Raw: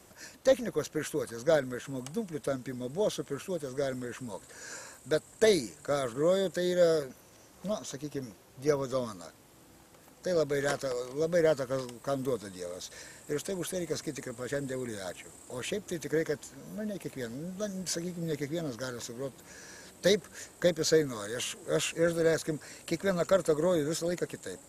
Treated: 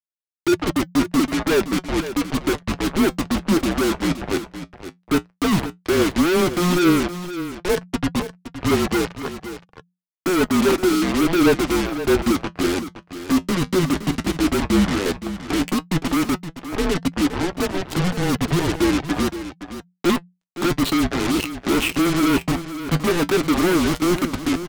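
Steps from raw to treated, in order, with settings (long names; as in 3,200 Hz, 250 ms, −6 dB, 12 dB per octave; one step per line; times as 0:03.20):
adaptive Wiener filter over 41 samples
low-pass that shuts in the quiet parts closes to 700 Hz, open at −26 dBFS
high-pass filter 240 Hz 6 dB per octave
treble cut that deepens with the level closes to 2,300 Hz, closed at −27 dBFS
in parallel at −0.5 dB: downward compressor 6 to 1, threshold −40 dBFS, peak gain reduction 19 dB
on the sum: phaser with its sweep stopped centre 1,200 Hz, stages 8
fuzz pedal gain 45 dB, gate −46 dBFS
harmonic generator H 7 −14 dB, 8 −17 dB, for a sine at −11 dBFS
flanger 0.11 Hz, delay 2.9 ms, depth 6.4 ms, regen +61%
frequency shifter −180 Hz
on a send: single-tap delay 518 ms −12 dB
on the sum: level +1.5 dB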